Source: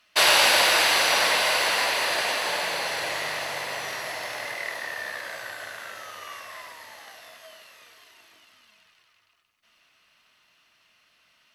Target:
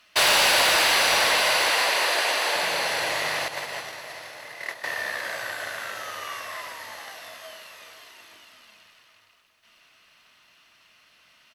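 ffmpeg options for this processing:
ffmpeg -i in.wav -filter_complex "[0:a]asettb=1/sr,asplit=3[link_01][link_02][link_03];[link_01]atrim=end=1.694[link_04];[link_02]atrim=start=1.69:end=2.55,asetpts=PTS-STARTPTS,afade=type=in:duration=0.004:curve=qsin,afade=type=out:start_time=0.856:duration=0.004:curve=qsin,highpass=frequency=280:width=0.5412,highpass=frequency=280:width=1.3066[link_05];[link_03]atrim=start=2.546[link_06];[link_04][link_05]acrossfade=duration=0.004:curve1=hsin:curve2=qsin[link_07];[link_07][link_06]acrossfade=duration=0.004:curve1=qsin:curve2=hsin,asettb=1/sr,asplit=3[link_08][link_09][link_10];[link_08]atrim=end=3.484[link_11];[link_09]atrim=start=3.48:end=4.84,asetpts=PTS-STARTPTS,afade=type=in:duration=0.004:curve=qsin,afade=type=out:start_time=1.356:duration=0.004:curve=qsin,agate=range=-14dB:threshold=-30dB:ratio=16:detection=peak[link_12];[link_10]atrim=start=4.836[link_13];[link_11][link_12]acrossfade=duration=0.004:curve1=hsin:curve2=qsin[link_14];[link_14][link_13]acrossfade=duration=0.004:curve1=qsin:curve2=hsin,asplit=2[link_15][link_16];[link_16]acompressor=threshold=-33dB:ratio=6,volume=-2.5dB[link_17];[link_15][link_17]amix=inputs=2:normalize=0,asoftclip=type=hard:threshold=-15dB,aecho=1:1:411|822|1233|1644|2055|2466:0.188|0.105|0.0591|0.0331|0.0185|0.0104" out.wav

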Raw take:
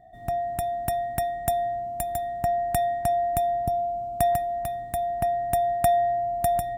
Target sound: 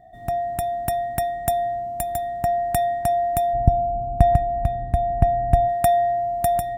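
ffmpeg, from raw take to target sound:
ffmpeg -i in.wav -filter_complex "[0:a]asplit=3[link_01][link_02][link_03];[link_01]afade=type=out:start_time=3.53:duration=0.02[link_04];[link_02]aemphasis=mode=reproduction:type=riaa,afade=type=in:start_time=3.53:duration=0.02,afade=type=out:start_time=5.67:duration=0.02[link_05];[link_03]afade=type=in:start_time=5.67:duration=0.02[link_06];[link_04][link_05][link_06]amix=inputs=3:normalize=0,volume=3dB" out.wav

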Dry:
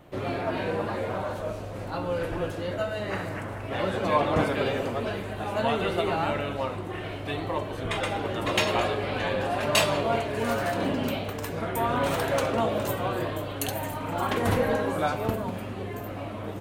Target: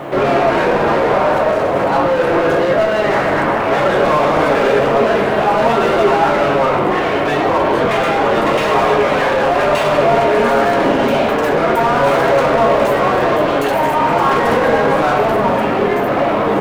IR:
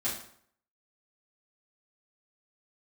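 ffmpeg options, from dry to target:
-filter_complex "[0:a]asplit=2[link_01][link_02];[link_02]highpass=frequency=720:poles=1,volume=37dB,asoftclip=type=tanh:threshold=-8dB[link_03];[link_01][link_03]amix=inputs=2:normalize=0,lowpass=frequency=1300:poles=1,volume=-6dB,asplit=2[link_04][link_05];[link_05]highpass=120,lowpass=2400[link_06];[1:a]atrim=start_sample=2205,asetrate=26460,aresample=44100[link_07];[link_06][link_07]afir=irnorm=-1:irlink=0,volume=-9dB[link_08];[link_04][link_08]amix=inputs=2:normalize=0,acrusher=bits=7:mix=0:aa=0.5,volume=-1dB"

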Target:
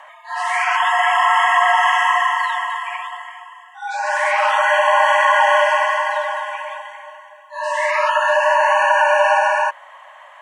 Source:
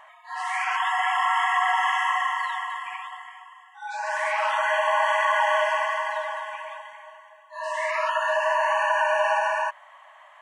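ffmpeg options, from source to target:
ffmpeg -i in.wav -af "highpass=frequency=340:width=0.5412,highpass=frequency=340:width=1.3066,afreqshift=-24,volume=8dB" out.wav

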